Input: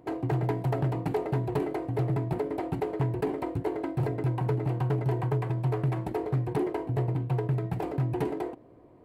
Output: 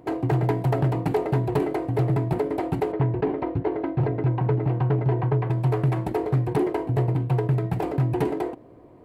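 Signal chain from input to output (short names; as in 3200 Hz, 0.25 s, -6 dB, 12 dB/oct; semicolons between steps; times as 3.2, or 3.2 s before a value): 2.92–5.5 air absorption 260 m; gain +5.5 dB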